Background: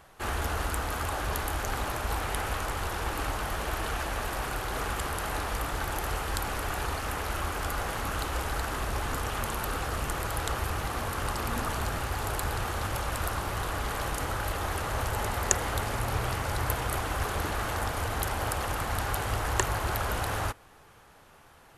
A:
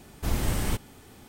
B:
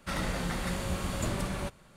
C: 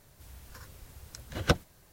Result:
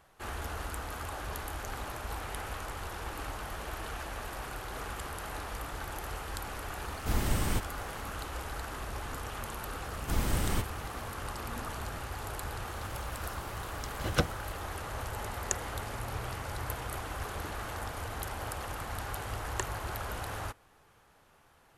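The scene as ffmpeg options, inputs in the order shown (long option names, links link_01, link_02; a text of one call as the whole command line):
ffmpeg -i bed.wav -i cue0.wav -i cue1.wav -i cue2.wav -filter_complex "[1:a]asplit=2[link_01][link_02];[0:a]volume=-7.5dB[link_03];[3:a]alimiter=level_in=11.5dB:limit=-1dB:release=50:level=0:latency=1[link_04];[link_01]atrim=end=1.28,asetpts=PTS-STARTPTS,volume=-3dB,afade=type=in:duration=0.004:curve=hsin,afade=type=out:start_time=1.276:duration=0.004:curve=hsin,adelay=6830[link_05];[link_02]atrim=end=1.28,asetpts=PTS-STARTPTS,volume=-3.5dB,afade=type=in:duration=0.004:curve=hsin,afade=type=out:start_time=1.276:duration=0.004:curve=hsin,adelay=9850[link_06];[link_04]atrim=end=1.92,asetpts=PTS-STARTPTS,volume=-11dB,afade=type=in:duration=0.004:curve=hsin,afade=type=out:start_time=1.916:duration=0.004:curve=hsin,adelay=12690[link_07];[link_03][link_05][link_06][link_07]amix=inputs=4:normalize=0" out.wav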